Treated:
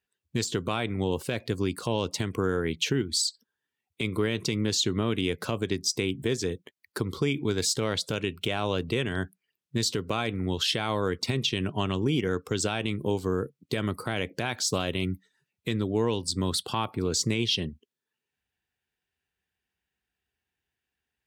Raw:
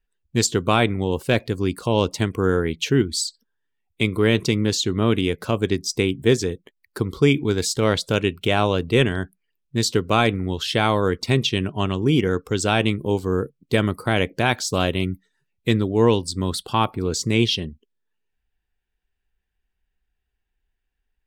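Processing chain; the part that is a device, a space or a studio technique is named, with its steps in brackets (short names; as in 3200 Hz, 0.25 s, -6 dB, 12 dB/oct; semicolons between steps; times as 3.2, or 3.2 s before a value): broadcast voice chain (HPF 81 Hz 24 dB/oct; de-esser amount 40%; compressor 5:1, threshold -21 dBFS, peak gain reduction 10 dB; bell 4700 Hz +3 dB 2.9 oct; limiter -13.5 dBFS, peak gain reduction 8 dB); gain -1.5 dB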